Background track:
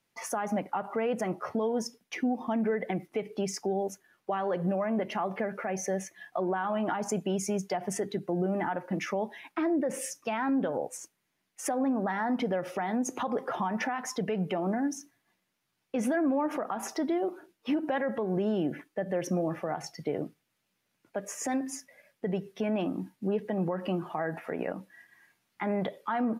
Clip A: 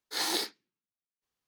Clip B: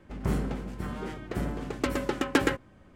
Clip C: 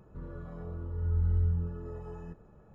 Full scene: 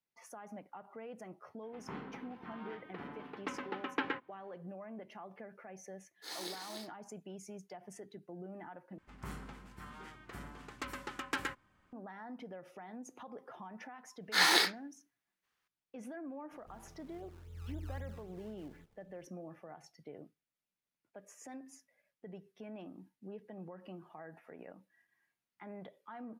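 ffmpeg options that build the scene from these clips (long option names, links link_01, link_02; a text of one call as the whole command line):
ffmpeg -i bed.wav -i cue0.wav -i cue1.wav -i cue2.wav -filter_complex "[2:a]asplit=2[link_01][link_02];[1:a]asplit=2[link_03][link_04];[0:a]volume=-18dB[link_05];[link_01]highpass=290,equalizer=frequency=360:width_type=q:width=4:gain=-5,equalizer=frequency=590:width_type=q:width=4:gain=-10,equalizer=frequency=950:width_type=q:width=4:gain=5,lowpass=frequency=3400:width=0.5412,lowpass=frequency=3400:width=1.3066[link_06];[link_03]aecho=1:1:294:0.596[link_07];[link_02]lowshelf=frequency=770:width_type=q:width=1.5:gain=-8[link_08];[link_04]equalizer=frequency=1700:width=0.65:gain=13[link_09];[3:a]acrusher=samples=24:mix=1:aa=0.000001:lfo=1:lforange=24:lforate=3.8[link_10];[link_05]asplit=2[link_11][link_12];[link_11]atrim=end=8.984[link_13];[link_08]atrim=end=2.95,asetpts=PTS-STARTPTS,volume=-9.5dB[link_14];[link_12]atrim=start=11.926[link_15];[link_06]atrim=end=2.95,asetpts=PTS-STARTPTS,volume=-8.5dB,afade=type=in:duration=0.004:curve=hsin,afade=type=out:start_time=2.946:duration=0.004:curve=hsin,adelay=1630[link_16];[link_07]atrim=end=1.47,asetpts=PTS-STARTPTS,volume=-13.5dB,afade=type=in:duration=0.004:curve=hsin,afade=type=out:start_time=1.466:duration=0.004:curve=hsin,adelay=6110[link_17];[link_09]atrim=end=1.47,asetpts=PTS-STARTPTS,volume=-2dB,afade=type=in:duration=0.004:curve=hsin,afade=type=out:start_time=1.466:duration=0.004:curve=hsin,adelay=14210[link_18];[link_10]atrim=end=2.74,asetpts=PTS-STARTPTS,volume=-16.5dB,afade=type=in:duration=0.004:curve=hsin,afade=type=out:start_time=2.736:duration=0.004:curve=hsin,adelay=728532S[link_19];[link_13][link_14]acrossfade=duration=0.004:curve1=hsin:curve2=hsin[link_20];[link_20][link_15]acrossfade=duration=0.004:curve1=hsin:curve2=hsin[link_21];[link_21][link_16][link_17][link_18][link_19]amix=inputs=5:normalize=0" out.wav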